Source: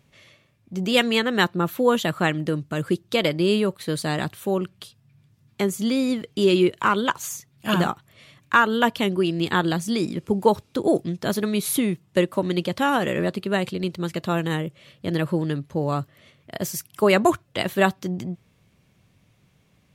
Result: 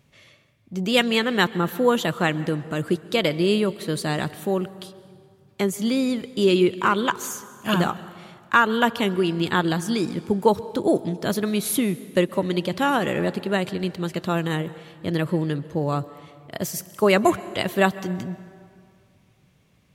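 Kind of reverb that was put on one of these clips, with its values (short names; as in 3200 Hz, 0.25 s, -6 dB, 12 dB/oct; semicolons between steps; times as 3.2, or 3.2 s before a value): plate-style reverb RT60 2.2 s, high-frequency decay 0.65×, pre-delay 0.115 s, DRR 16.5 dB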